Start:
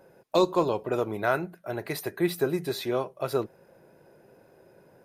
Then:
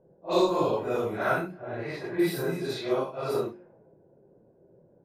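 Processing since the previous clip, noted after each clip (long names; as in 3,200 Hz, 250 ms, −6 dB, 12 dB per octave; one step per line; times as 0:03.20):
random phases in long frames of 200 ms
hum removal 51.13 Hz, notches 7
low-pass that shuts in the quiet parts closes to 410 Hz, open at −25.5 dBFS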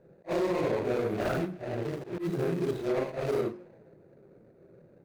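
running median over 41 samples
brickwall limiter −25 dBFS, peak gain reduction 10.5 dB
volume swells 113 ms
level +3.5 dB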